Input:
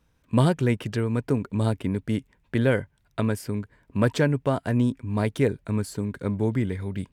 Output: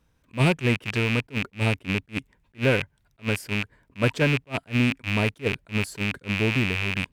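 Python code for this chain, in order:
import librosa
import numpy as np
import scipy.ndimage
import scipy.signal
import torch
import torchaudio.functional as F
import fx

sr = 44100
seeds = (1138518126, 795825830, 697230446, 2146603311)

y = fx.rattle_buzz(x, sr, strikes_db=-31.0, level_db=-14.0)
y = fx.attack_slew(y, sr, db_per_s=370.0)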